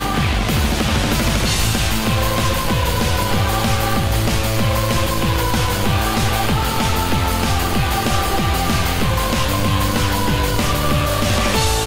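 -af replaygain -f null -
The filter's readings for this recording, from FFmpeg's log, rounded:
track_gain = +2.0 dB
track_peak = 0.335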